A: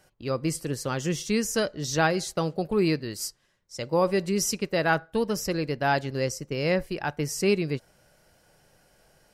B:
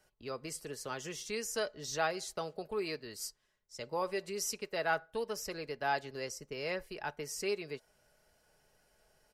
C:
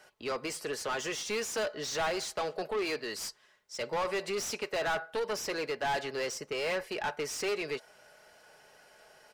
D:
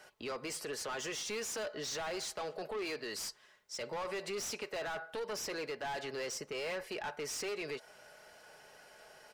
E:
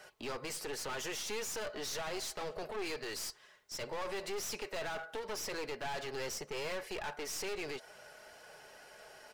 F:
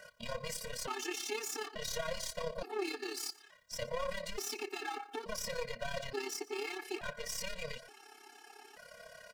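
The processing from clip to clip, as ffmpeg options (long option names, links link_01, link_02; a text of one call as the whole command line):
ffmpeg -i in.wav -filter_complex "[0:a]equalizer=frequency=190:width=1.8:gain=-6.5,aecho=1:1:4.7:0.38,acrossover=split=370|980|3500[link_01][link_02][link_03][link_04];[link_01]acompressor=threshold=-39dB:ratio=6[link_05];[link_05][link_02][link_03][link_04]amix=inputs=4:normalize=0,volume=-9dB" out.wav
ffmpeg -i in.wav -filter_complex "[0:a]asplit=2[link_01][link_02];[link_02]highpass=frequency=720:poles=1,volume=28dB,asoftclip=type=tanh:threshold=-18dB[link_03];[link_01][link_03]amix=inputs=2:normalize=0,lowpass=frequency=3100:poles=1,volume=-6dB,volume=-5.5dB" out.wav
ffmpeg -i in.wav -af "acompressor=threshold=-36dB:ratio=6,alimiter=level_in=11dB:limit=-24dB:level=0:latency=1:release=56,volume=-11dB,volume=1dB" out.wav
ffmpeg -i in.wav -af "flanger=delay=1.5:depth=1.9:regen=-62:speed=2:shape=triangular,aeval=exprs='clip(val(0),-1,0.00299)':channel_layout=same,volume=6.5dB" out.wav
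ffmpeg -i in.wav -filter_complex "[0:a]asplit=2[link_01][link_02];[link_02]adelay=116.6,volume=-20dB,highshelf=frequency=4000:gain=-2.62[link_03];[link_01][link_03]amix=inputs=2:normalize=0,tremolo=f=34:d=0.667,afftfilt=real='re*gt(sin(2*PI*0.57*pts/sr)*(1-2*mod(floor(b*sr/1024/230),2)),0)':imag='im*gt(sin(2*PI*0.57*pts/sr)*(1-2*mod(floor(b*sr/1024/230),2)),0)':win_size=1024:overlap=0.75,volume=6.5dB" out.wav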